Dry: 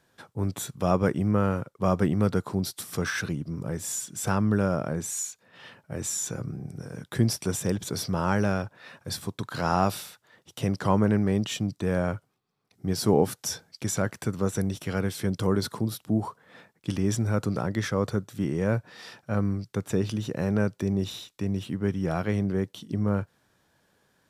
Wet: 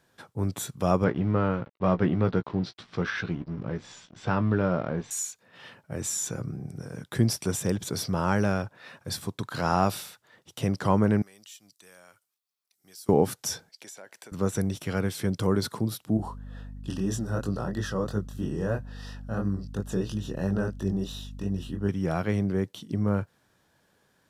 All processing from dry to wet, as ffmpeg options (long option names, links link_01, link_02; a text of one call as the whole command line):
ffmpeg -i in.wav -filter_complex "[0:a]asettb=1/sr,asplit=3[link_01][link_02][link_03];[link_01]atrim=end=1.044[link_04];[link_02]atrim=start=1.04:end=5.11,asetpts=PTS-STARTPTS,afade=type=in:duration=0.004:curve=qsin,afade=type=out:start_time=4.066:duration=0.004:curve=qsin,aeval=exprs='sgn(val(0))*max(abs(val(0))-0.00596,0)':channel_layout=same,lowpass=frequency=4200:width=0.5412,lowpass=frequency=4200:width=1.3066,asplit=2[link_05][link_06];[link_06]adelay=17,volume=-9dB[link_07];[link_05][link_07]amix=inputs=2:normalize=0,atrim=end_sample=179487[link_08];[link_03]atrim=start=5.106[link_09];[link_04][link_08]acrossfade=duration=0.004:curve1=hsin:curve2=qsin[link_10];[link_10][link_09]acrossfade=duration=0.004:curve1=qsin:curve2=hsin,asettb=1/sr,asplit=3[link_11][link_12][link_13];[link_11]atrim=end=11.224[link_14];[link_12]atrim=start=11.22:end=13.09,asetpts=PTS-STARTPTS,afade=type=in:duration=0.004:curve=qsin,afade=type=out:start_time=1.866:duration=0.004:curve=qsin,aderivative,acompressor=threshold=-52dB:ratio=2:attack=3.2:release=140:knee=1:detection=peak[link_15];[link_13]atrim=start=13.086[link_16];[link_14][link_15]acrossfade=duration=0.004:curve1=hsin:curve2=qsin[link_17];[link_17][link_16]acrossfade=duration=0.004:curve1=qsin:curve2=hsin,asettb=1/sr,asplit=3[link_18][link_19][link_20];[link_18]atrim=end=13.694[link_21];[link_19]atrim=start=13.69:end=14.32,asetpts=PTS-STARTPTS,afade=type=in:duration=0.004:curve=qsin,afade=type=out:start_time=0.626:duration=0.004:curve=qsin,highpass=550,equalizer=frequency=1200:width=4.2:gain=-10.5,acompressor=threshold=-44dB:ratio=4:attack=3.2:release=140:knee=1:detection=peak[link_22];[link_20]atrim=start=14.316[link_23];[link_21][link_22]acrossfade=duration=0.004:curve1=hsin:curve2=qsin[link_24];[link_24][link_23]acrossfade=duration=0.004:curve1=qsin:curve2=hsin,asettb=1/sr,asplit=3[link_25][link_26][link_27];[link_25]atrim=end=16.174[link_28];[link_26]atrim=start=16.17:end=21.89,asetpts=PTS-STARTPTS,afade=type=in:duration=0.004:curve=qsin,afade=type=out:start_time=5.716:duration=0.004:curve=qsin,flanger=delay=19.5:depth=7.4:speed=3,asuperstop=centerf=2200:order=20:qfactor=4.2,aeval=exprs='val(0)+0.0112*(sin(2*PI*50*n/s)+sin(2*PI*2*50*n/s)/2+sin(2*PI*3*50*n/s)/3+sin(2*PI*4*50*n/s)/4+sin(2*PI*5*50*n/s)/5)':channel_layout=same[link_29];[link_27]atrim=start=21.886[link_30];[link_28][link_29]acrossfade=duration=0.004:curve1=hsin:curve2=qsin[link_31];[link_31][link_30]acrossfade=duration=0.004:curve1=qsin:curve2=hsin" out.wav